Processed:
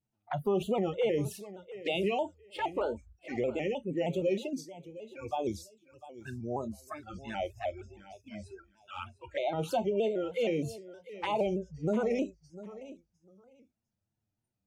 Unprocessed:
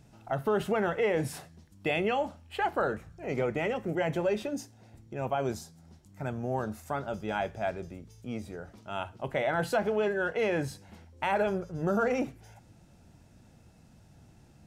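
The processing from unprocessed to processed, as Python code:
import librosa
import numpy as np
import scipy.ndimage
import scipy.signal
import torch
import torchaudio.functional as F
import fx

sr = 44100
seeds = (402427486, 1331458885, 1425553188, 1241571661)

p1 = fx.env_flanger(x, sr, rest_ms=11.3, full_db=-27.5)
p2 = fx.noise_reduce_blind(p1, sr, reduce_db=27)
p3 = p2 + fx.echo_feedback(p2, sr, ms=704, feedback_pct=18, wet_db=-16.0, dry=0)
y = fx.vibrato_shape(p3, sr, shape='square', rate_hz=3.2, depth_cents=100.0)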